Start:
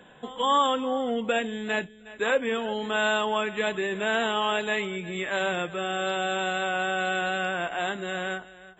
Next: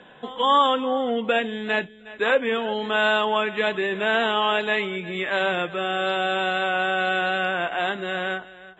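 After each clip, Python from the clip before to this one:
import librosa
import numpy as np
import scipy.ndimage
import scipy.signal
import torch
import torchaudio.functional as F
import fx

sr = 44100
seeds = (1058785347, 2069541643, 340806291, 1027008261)

y = scipy.signal.sosfilt(scipy.signal.butter(4, 5200.0, 'lowpass', fs=sr, output='sos'), x)
y = fx.low_shelf(y, sr, hz=160.0, db=-7.0)
y = y * 10.0 ** (4.5 / 20.0)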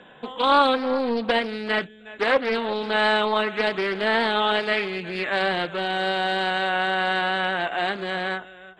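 y = fx.doppler_dist(x, sr, depth_ms=0.38)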